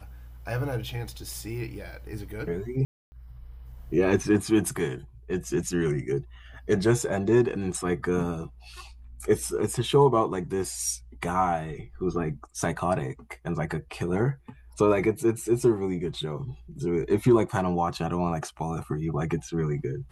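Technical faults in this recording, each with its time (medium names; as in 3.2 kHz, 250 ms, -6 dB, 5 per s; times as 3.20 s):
2.85–3.12 s: dropout 270 ms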